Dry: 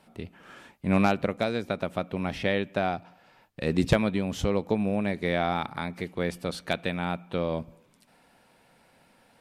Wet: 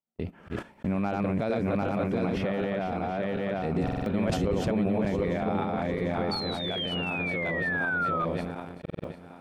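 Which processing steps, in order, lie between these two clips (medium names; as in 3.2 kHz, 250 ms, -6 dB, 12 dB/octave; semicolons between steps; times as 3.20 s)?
backward echo that repeats 374 ms, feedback 64%, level -1 dB; in parallel at +3 dB: compression 5:1, threshold -35 dBFS, peak gain reduction 17.5 dB; on the sum: painted sound fall, 6.31–8.25 s, 1.2–4.5 kHz -20 dBFS; gate -30 dBFS, range -46 dB; peak limiter -18 dBFS, peak gain reduction 11 dB; treble shelf 2 kHz -11 dB; band-stop 3.8 kHz, Q 18; buffer glitch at 3.83/8.81 s, samples 2048, times 4; decay stretcher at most 39 dB/s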